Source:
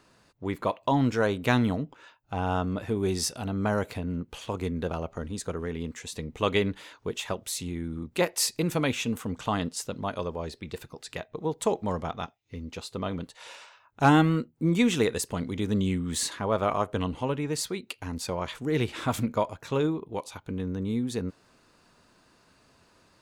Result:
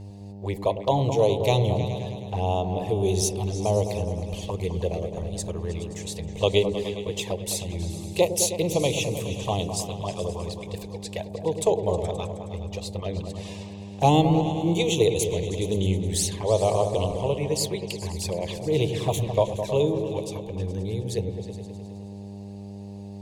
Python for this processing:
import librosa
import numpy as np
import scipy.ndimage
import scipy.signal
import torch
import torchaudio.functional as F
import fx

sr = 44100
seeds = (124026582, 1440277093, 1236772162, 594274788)

p1 = fx.env_flanger(x, sr, rest_ms=4.5, full_db=-25.0)
p2 = fx.fixed_phaser(p1, sr, hz=580.0, stages=4)
p3 = fx.dmg_buzz(p2, sr, base_hz=100.0, harmonics=9, level_db=-47.0, tilt_db=-9, odd_only=False)
p4 = p3 + fx.echo_opening(p3, sr, ms=105, hz=400, octaves=2, feedback_pct=70, wet_db=-6, dry=0)
y = F.gain(torch.from_numpy(p4), 7.5).numpy()